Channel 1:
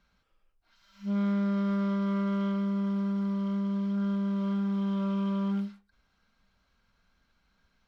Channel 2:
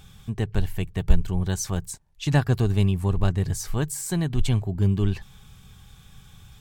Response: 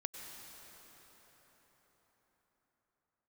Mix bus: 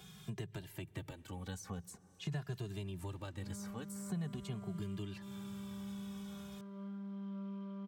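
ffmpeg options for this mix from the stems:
-filter_complex "[0:a]highshelf=f=2k:g=-9,adelay=2350,volume=-17dB,asplit=2[a][b];[b]volume=-4dB[c];[1:a]acompressor=threshold=-27dB:ratio=2.5,asplit=2[d][e];[e]adelay=2.4,afreqshift=-0.45[f];[d][f]amix=inputs=2:normalize=1,volume=0dB,asplit=2[g][h];[h]volume=-19.5dB[i];[2:a]atrim=start_sample=2205[j];[c][i]amix=inputs=2:normalize=0[k];[k][j]afir=irnorm=-1:irlink=0[l];[a][g][l]amix=inputs=3:normalize=0,acrossover=split=190|1800[m][n][o];[m]acompressor=threshold=-37dB:ratio=4[p];[n]acompressor=threshold=-47dB:ratio=4[q];[o]acompressor=threshold=-54dB:ratio=4[r];[p][q][r]amix=inputs=3:normalize=0,highpass=140"

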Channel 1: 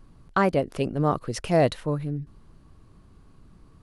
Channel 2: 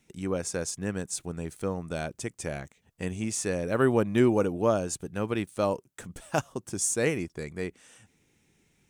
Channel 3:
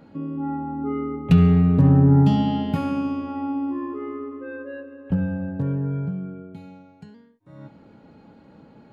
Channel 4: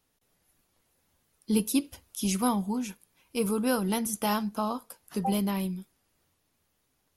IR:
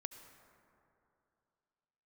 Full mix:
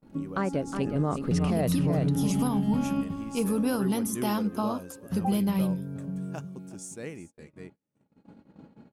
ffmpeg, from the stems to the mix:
-filter_complex "[0:a]dynaudnorm=f=110:g=13:m=11.5dB,volume=-9.5dB,asplit=2[a][b];[b]volume=-8.5dB[c];[1:a]volume=-14.5dB,asplit=3[d][e][f];[e]volume=-17.5dB[g];[2:a]volume=-3dB,asplit=2[h][i];[i]volume=-14dB[j];[3:a]volume=-1.5dB[k];[f]apad=whole_len=393506[l];[h][l]sidechaincompress=threshold=-52dB:ratio=10:attack=16:release=746[m];[c][g][j]amix=inputs=3:normalize=0,aecho=0:1:364:1[n];[a][d][m][k][n]amix=inputs=5:normalize=0,equalizer=f=200:w=0.88:g=5,agate=range=-33dB:threshold=-47dB:ratio=16:detection=peak,alimiter=limit=-17.5dB:level=0:latency=1:release=96"

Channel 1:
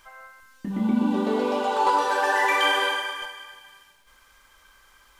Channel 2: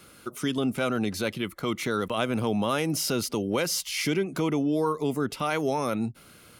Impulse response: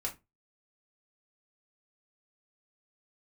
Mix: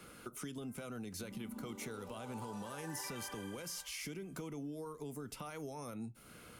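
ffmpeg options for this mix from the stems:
-filter_complex "[0:a]adelay=550,volume=-14.5dB[a];[1:a]highshelf=f=9.3k:g=-6.5,alimiter=limit=-21.5dB:level=0:latency=1:release=115,volume=-3dB,asplit=2[b][c];[c]volume=-12dB[d];[2:a]atrim=start_sample=2205[e];[d][e]afir=irnorm=-1:irlink=0[f];[a][b][f]amix=inputs=3:normalize=0,acrossover=split=120|5600[g][h][i];[g]acompressor=threshold=-53dB:ratio=4[j];[h]acompressor=threshold=-46dB:ratio=4[k];[i]acompressor=threshold=-44dB:ratio=4[l];[j][k][l]amix=inputs=3:normalize=0,equalizer=f=4.2k:w=1.2:g=-4.5"

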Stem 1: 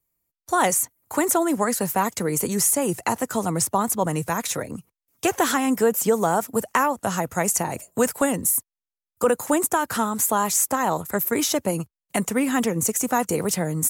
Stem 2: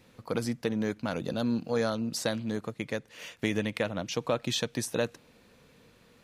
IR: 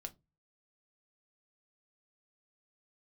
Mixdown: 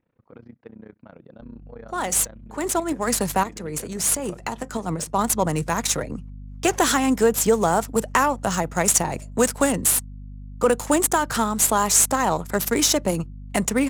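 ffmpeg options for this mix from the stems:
-filter_complex "[0:a]aeval=exprs='val(0)+0.0126*(sin(2*PI*50*n/s)+sin(2*PI*2*50*n/s)/2+sin(2*PI*3*50*n/s)/3+sin(2*PI*4*50*n/s)/4+sin(2*PI*5*50*n/s)/5)':c=same,adynamicequalizer=threshold=0.01:dfrequency=3400:dqfactor=0.7:tfrequency=3400:tqfactor=0.7:attack=5:release=100:ratio=0.375:range=3.5:mode=boostabove:tftype=highshelf,adelay=1400,volume=0dB,asplit=2[a][b];[b]volume=-11.5dB[c];[1:a]tremolo=f=30:d=0.919,lowpass=2.3k,volume=-9.5dB,asplit=2[d][e];[e]apad=whole_len=674606[f];[a][f]sidechaincompress=threshold=-57dB:ratio=3:attack=21:release=113[g];[2:a]atrim=start_sample=2205[h];[c][h]afir=irnorm=-1:irlink=0[i];[g][d][i]amix=inputs=3:normalize=0,adynamicsmooth=sensitivity=3.5:basefreq=3k"

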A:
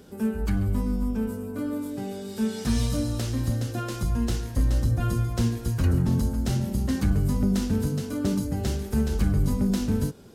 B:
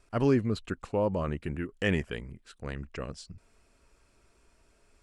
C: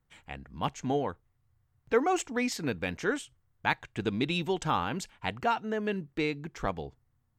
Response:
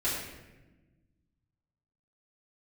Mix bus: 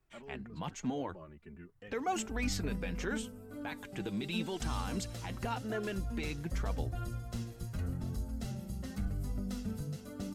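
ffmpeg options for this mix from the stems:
-filter_complex "[0:a]aecho=1:1:1.5:0.37,adelay=1950,volume=-10dB[a];[1:a]lowpass=f=3.1k:p=1,alimiter=level_in=1dB:limit=-24dB:level=0:latency=1,volume=-1dB,asplit=2[b][c];[c]adelay=3.1,afreqshift=0.83[d];[b][d]amix=inputs=2:normalize=1,volume=-8.5dB[e];[2:a]volume=2dB[f];[e][f]amix=inputs=2:normalize=0,acrossover=split=120|3000[g][h][i];[h]acompressor=threshold=-26dB:ratio=6[j];[g][j][i]amix=inputs=3:normalize=0,alimiter=limit=-23.5dB:level=0:latency=1:release=16,volume=0dB[k];[a][k]amix=inputs=2:normalize=0,flanger=delay=2.5:depth=3.8:regen=40:speed=0.86:shape=triangular"

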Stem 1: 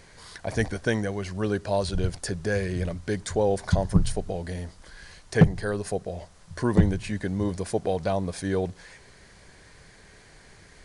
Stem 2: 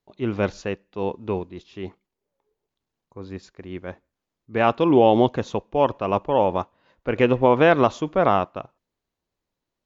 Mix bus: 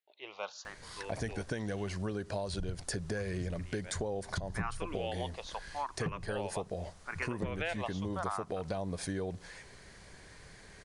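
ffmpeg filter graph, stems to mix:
-filter_complex "[0:a]acompressor=threshold=-26dB:ratio=4,adelay=650,volume=-2dB[a];[1:a]highpass=1k,asplit=2[b][c];[c]afreqshift=0.79[d];[b][d]amix=inputs=2:normalize=1,volume=-4dB[e];[a][e]amix=inputs=2:normalize=0,acompressor=threshold=-33dB:ratio=4"

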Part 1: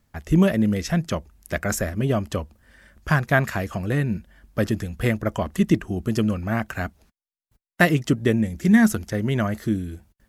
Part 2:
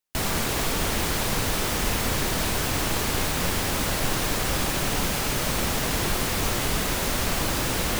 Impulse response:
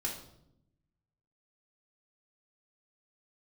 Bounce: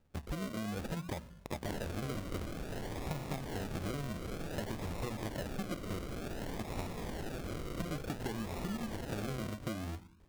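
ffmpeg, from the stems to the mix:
-filter_complex "[0:a]bandreject=f=60:t=h:w=6,bandreject=f=120:t=h:w=6,bandreject=f=180:t=h:w=6,bandreject=f=240:t=h:w=6,acompressor=threshold=-25dB:ratio=6,volume=-5.5dB,asplit=3[a][b][c];[a]atrim=end=5.99,asetpts=PTS-STARTPTS,afade=t=out:st=5.986:d=0.004:c=hsin[d];[b]atrim=start=5.99:end=6.59,asetpts=PTS-STARTPTS,volume=0[e];[c]atrim=start=6.59,asetpts=PTS-STARTPTS,afade=t=in:d=0.004:c=hsin[f];[d][e][f]concat=n=3:v=0:a=1,asplit=2[g][h];[h]volume=-19.5dB[i];[1:a]flanger=delay=0.1:depth=6.6:regen=-60:speed=1.5:shape=sinusoidal,alimiter=level_in=1dB:limit=-24dB:level=0:latency=1,volume=-1dB,adelay=1500,volume=-5dB[j];[2:a]atrim=start_sample=2205[k];[i][k]afir=irnorm=-1:irlink=0[l];[g][j][l]amix=inputs=3:normalize=0,acrusher=samples=40:mix=1:aa=0.000001:lfo=1:lforange=24:lforate=0.55,acompressor=threshold=-35dB:ratio=6"

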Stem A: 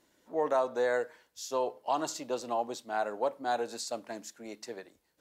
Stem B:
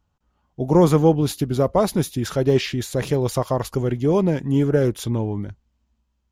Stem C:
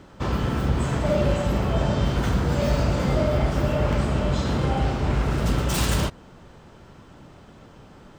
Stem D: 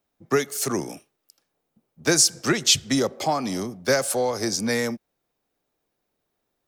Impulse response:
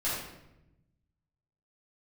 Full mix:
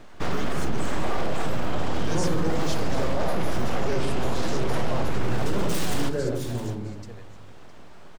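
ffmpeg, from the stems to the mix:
-filter_complex "[0:a]adelay=2400,volume=-6dB,asplit=2[a][b];[b]volume=-15dB[c];[1:a]adelay=1400,volume=-14.5dB,asplit=2[d][e];[e]volume=-3.5dB[f];[2:a]aeval=exprs='abs(val(0))':c=same,volume=0.5dB,asplit=3[g][h][i];[h]volume=-21.5dB[j];[i]volume=-17dB[k];[3:a]lowpass=8.6k,volume=-13.5dB[l];[4:a]atrim=start_sample=2205[m];[f][j]amix=inputs=2:normalize=0[n];[n][m]afir=irnorm=-1:irlink=0[o];[c][k]amix=inputs=2:normalize=0,aecho=0:1:661:1[p];[a][d][g][l][o][p]amix=inputs=6:normalize=0,alimiter=limit=-13.5dB:level=0:latency=1:release=31"

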